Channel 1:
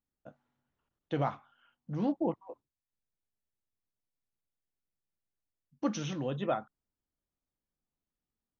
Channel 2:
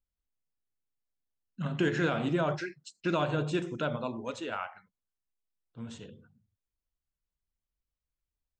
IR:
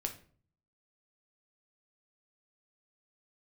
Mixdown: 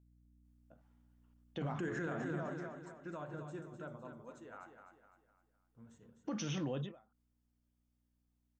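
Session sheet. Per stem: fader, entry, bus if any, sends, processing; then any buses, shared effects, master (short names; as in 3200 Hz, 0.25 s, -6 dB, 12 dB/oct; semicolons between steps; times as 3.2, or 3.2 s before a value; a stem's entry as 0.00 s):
0.0 dB, 0.45 s, no send, no echo send, notch 4000 Hz; ending taper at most 160 dB/s
2.03 s -4.5 dB -> 2.64 s -16.5 dB, 0.00 s, no send, echo send -7.5 dB, hum 60 Hz, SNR 27 dB; band shelf 3500 Hz -11.5 dB 1.3 oct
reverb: off
echo: feedback echo 0.254 s, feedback 40%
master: limiter -30.5 dBFS, peak gain reduction 11 dB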